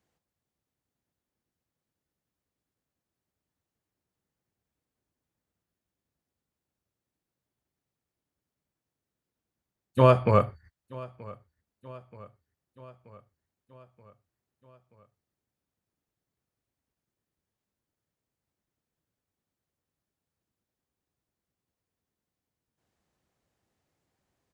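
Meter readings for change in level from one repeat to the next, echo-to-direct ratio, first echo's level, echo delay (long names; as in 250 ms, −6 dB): −4.5 dB, −19.5 dB, −21.5 dB, 929 ms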